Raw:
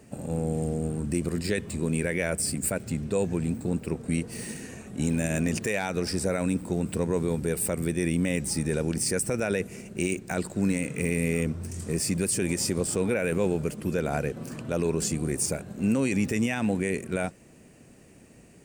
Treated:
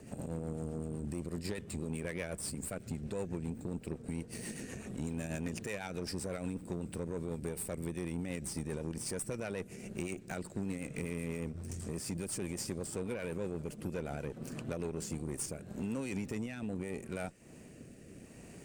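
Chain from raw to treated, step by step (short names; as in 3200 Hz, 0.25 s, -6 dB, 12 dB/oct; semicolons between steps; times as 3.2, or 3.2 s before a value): compressor 2.5:1, threshold -43 dBFS, peak gain reduction 14.5 dB; rotary speaker horn 8 Hz, later 0.75 Hz, at 14.78; added harmonics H 8 -24 dB, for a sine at -26.5 dBFS; gain +2.5 dB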